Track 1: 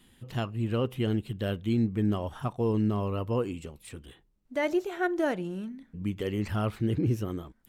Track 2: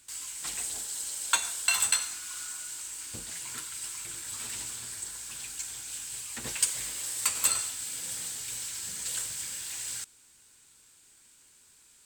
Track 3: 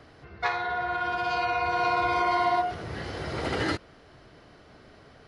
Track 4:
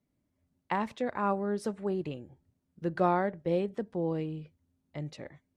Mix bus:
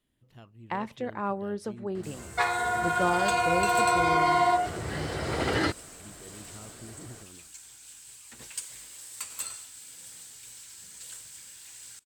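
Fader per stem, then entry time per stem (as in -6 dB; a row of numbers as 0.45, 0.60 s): -19.5, -10.0, +1.5, -1.5 dB; 0.00, 1.95, 1.95, 0.00 s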